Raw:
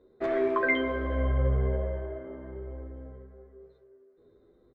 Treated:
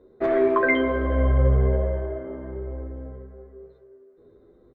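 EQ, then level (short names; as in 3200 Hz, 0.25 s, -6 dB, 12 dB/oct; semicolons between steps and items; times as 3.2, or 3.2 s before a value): high shelf 2800 Hz -9.5 dB; +7.0 dB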